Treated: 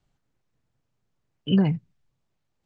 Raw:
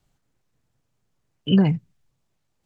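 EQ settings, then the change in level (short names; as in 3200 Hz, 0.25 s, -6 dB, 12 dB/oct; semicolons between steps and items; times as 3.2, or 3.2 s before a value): air absorption 58 m; -3.0 dB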